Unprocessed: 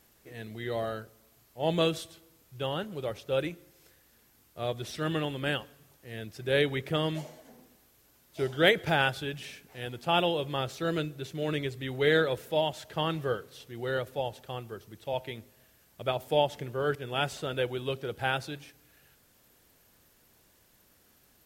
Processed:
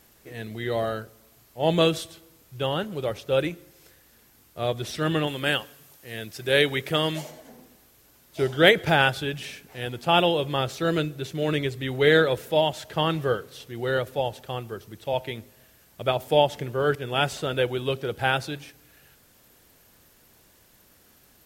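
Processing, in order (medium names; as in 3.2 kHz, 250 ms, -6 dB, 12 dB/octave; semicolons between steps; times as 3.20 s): 5.27–7.31 s: tilt EQ +1.5 dB/octave; trim +6 dB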